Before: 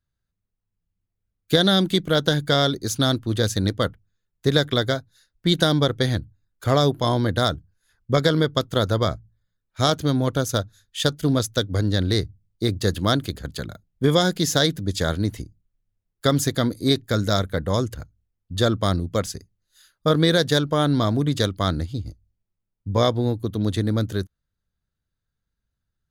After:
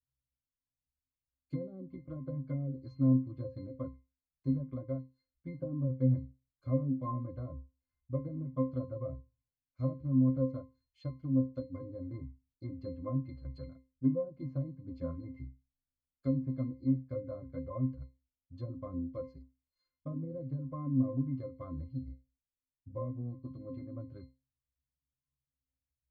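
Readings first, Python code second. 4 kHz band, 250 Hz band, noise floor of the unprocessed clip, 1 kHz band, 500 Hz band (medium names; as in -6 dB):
under -40 dB, -11.0 dB, -81 dBFS, -23.0 dB, -18.5 dB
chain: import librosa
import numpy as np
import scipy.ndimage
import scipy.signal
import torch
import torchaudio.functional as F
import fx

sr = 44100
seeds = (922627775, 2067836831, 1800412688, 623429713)

y = fx.env_lowpass_down(x, sr, base_hz=410.0, full_db=-14.5)
y = fx.chorus_voices(y, sr, voices=6, hz=0.3, base_ms=10, depth_ms=2.6, mix_pct=40)
y = fx.octave_resonator(y, sr, note='C', decay_s=0.27)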